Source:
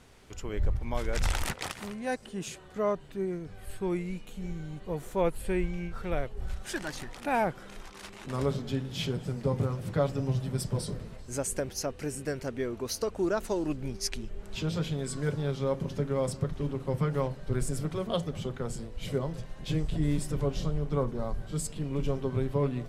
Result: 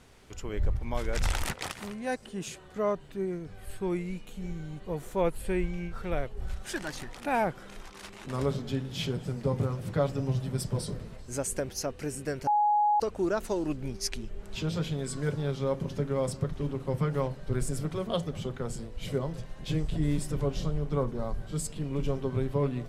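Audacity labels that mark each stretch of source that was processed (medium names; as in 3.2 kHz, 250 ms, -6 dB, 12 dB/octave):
12.470000	13.000000	bleep 835 Hz -21 dBFS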